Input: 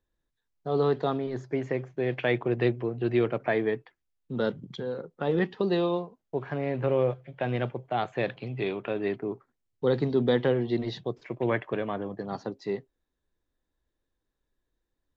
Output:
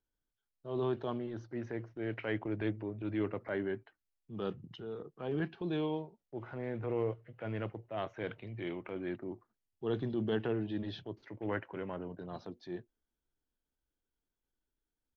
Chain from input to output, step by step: pitch shift -2 st; transient shaper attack -6 dB, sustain +1 dB; trim -8 dB

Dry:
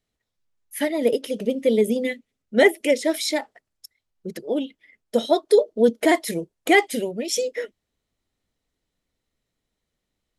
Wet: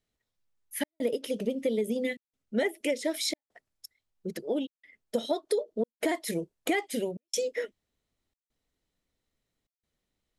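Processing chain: compression 6:1, threshold -22 dBFS, peak gain reduction 11.5 dB; trance gate "xxxxx.xxxxxxx.x" 90 bpm -60 dB; trim -3 dB

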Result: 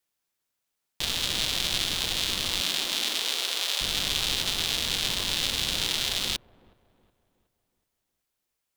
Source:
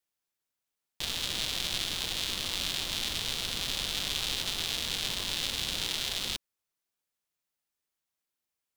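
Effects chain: 2.61–3.80 s: high-pass 160 Hz -> 470 Hz 24 dB/octave; feedback echo behind a low-pass 368 ms, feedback 43%, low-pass 880 Hz, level -19.5 dB; trim +5 dB

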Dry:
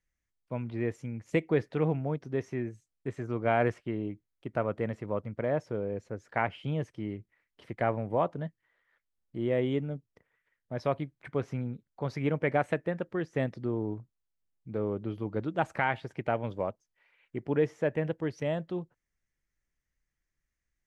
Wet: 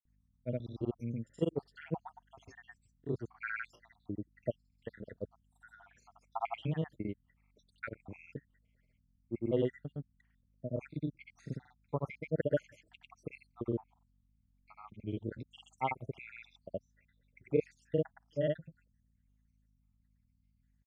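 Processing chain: random holes in the spectrogram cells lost 76%; hum 50 Hz, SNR 32 dB; granulator 100 ms, grains 20 per s, spray 100 ms, pitch spread up and down by 0 st

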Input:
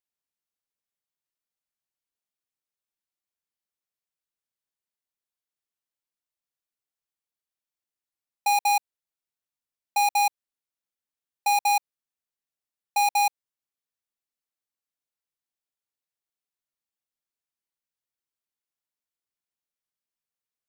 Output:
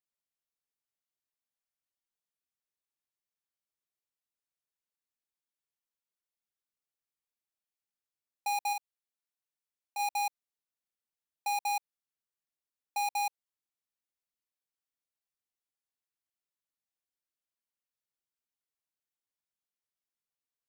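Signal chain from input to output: 8.73–9.99 s: high-pass 390 Hz 6 dB/octave; peak limiter -25 dBFS, peak gain reduction 8.5 dB; trim -5 dB

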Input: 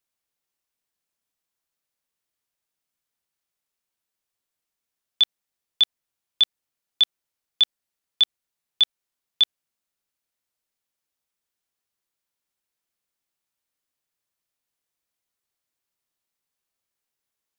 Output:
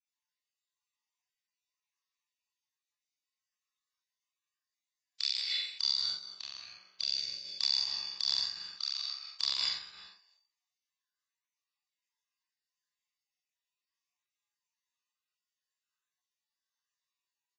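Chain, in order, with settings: random holes in the spectrogram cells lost 34%; comb 1.1 ms, depth 45%; flutter echo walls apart 7.5 m, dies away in 0.89 s; saturation -23 dBFS, distortion -6 dB; distance through air 74 m; reverberation RT60 0.95 s, pre-delay 141 ms, DRR 2.5 dB; chorus voices 4, 0.13 Hz, delay 28 ms, depth 1.1 ms; tilt EQ +2 dB/octave; hum notches 50/100/150/200/250 Hz; formant shift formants +5 st; trim -4.5 dB; Vorbis 32 kbps 16 kHz

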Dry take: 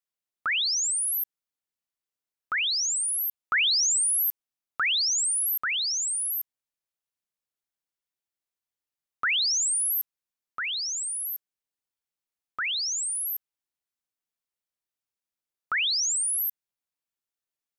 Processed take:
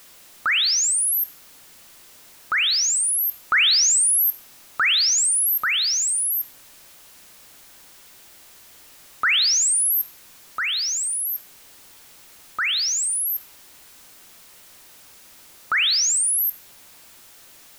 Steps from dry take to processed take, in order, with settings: jump at every zero crossing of -45.5 dBFS; on a send: reverberation RT60 0.80 s, pre-delay 3 ms, DRR 12 dB; on the sum: trim +5.5 dB

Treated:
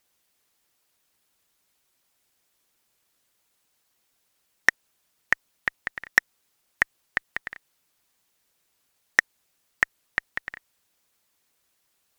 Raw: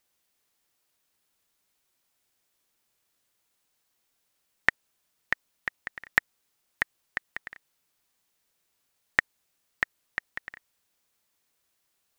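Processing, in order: one-sided clip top -10 dBFS, bottom -7.5 dBFS; harmonic-percussive split percussive +5 dB; trim +1 dB

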